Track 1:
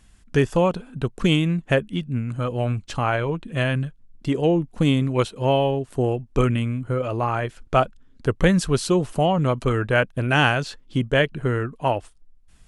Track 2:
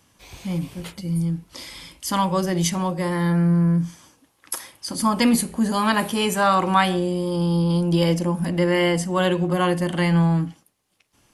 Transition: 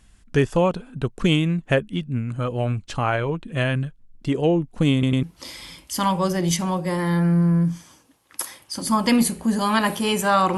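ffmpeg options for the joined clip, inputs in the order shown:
ffmpeg -i cue0.wav -i cue1.wav -filter_complex "[0:a]apad=whole_dur=10.57,atrim=end=10.57,asplit=3[link_01][link_02][link_03];[link_01]atrim=end=5.032[link_04];[link_02]atrim=start=4.928:end=5.032[link_05];[link_03]atrim=start=4.928:end=5.032[link_06];[1:a]atrim=start=1.358:end=6.7[link_07];[link_04][link_05]acrossfade=duration=0.004:curve1=hsin:curve2=hsin[link_08];[link_08][link_06]acrossfade=duration=0.004:curve1=hsin:curve2=hsin[link_09];[link_09][link_07]acrossfade=duration=0.004:curve1=hsin:curve2=hsin" out.wav

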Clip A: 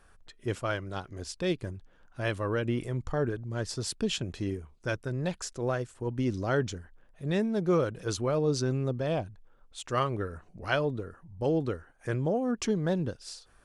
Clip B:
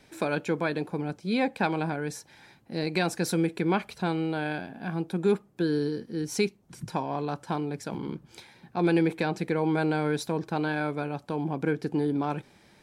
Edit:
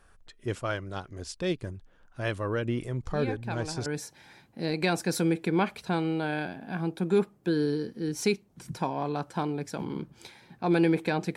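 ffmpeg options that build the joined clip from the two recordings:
ffmpeg -i cue0.wav -i cue1.wav -filter_complex "[1:a]asplit=2[link_01][link_02];[0:a]apad=whole_dur=11.36,atrim=end=11.36,atrim=end=3.862[link_03];[link_02]atrim=start=1.988:end=9.49[link_04];[link_01]atrim=start=1.16:end=1.99,asetpts=PTS-STARTPTS,volume=-10dB,afade=type=in:duration=0.004:curve=hsin,afade=type=out:start_time=0.826:duration=0.004:curve=hsin,adelay=3030[link_05];[link_03][link_04]acrossfade=duration=0.004:curve1=hsin:curve2=hsin[link_06];[link_06][link_05]amix=inputs=2:normalize=0" out.wav

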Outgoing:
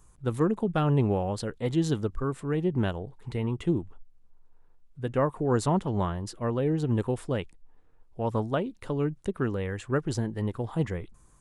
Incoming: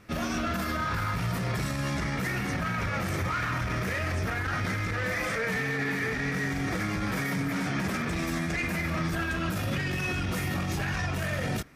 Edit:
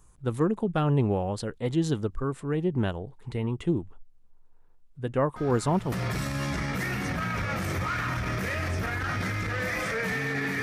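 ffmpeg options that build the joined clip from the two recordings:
ffmpeg -i cue0.wav -i cue1.wav -filter_complex "[1:a]asplit=2[link_01][link_02];[0:a]apad=whole_dur=10.62,atrim=end=10.62,atrim=end=5.922[link_03];[link_02]atrim=start=1.358:end=6.06[link_04];[link_01]atrim=start=0.8:end=1.36,asetpts=PTS-STARTPTS,volume=-13dB,afade=type=in:duration=0.004:curve=hsin,afade=type=out:start_time=0.556:duration=0.004:curve=hsin,adelay=5360[link_05];[link_03][link_04]acrossfade=duration=0.004:curve1=hsin:curve2=hsin[link_06];[link_06][link_05]amix=inputs=2:normalize=0" out.wav

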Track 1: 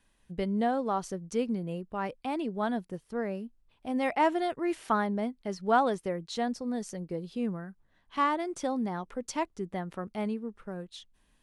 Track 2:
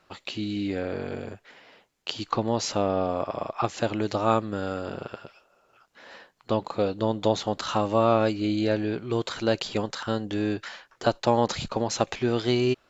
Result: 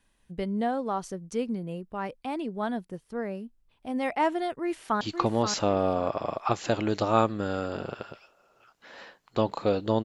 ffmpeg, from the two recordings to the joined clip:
ffmpeg -i cue0.wav -i cue1.wav -filter_complex "[0:a]apad=whole_dur=10.04,atrim=end=10.04,atrim=end=5.012[link_01];[1:a]atrim=start=2.138:end=7.17[link_02];[link_01][link_02]acrossfade=duration=0.004:curve1=hsin:curve2=hsin,asplit=2[link_03][link_04];[link_04]afade=type=in:start_time=4.6:duration=0.01,afade=type=out:start_time=5.01:duration=0.01,aecho=0:1:530|1060|1590:0.473151|0.118288|0.029572[link_05];[link_03][link_05]amix=inputs=2:normalize=0" out.wav

